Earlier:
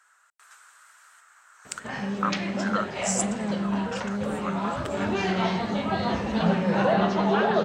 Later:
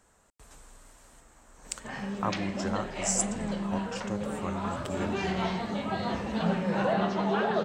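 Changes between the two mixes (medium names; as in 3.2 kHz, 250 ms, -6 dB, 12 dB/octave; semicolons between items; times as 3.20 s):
speech: remove resonant high-pass 1.4 kHz, resonance Q 4.2; background -5.0 dB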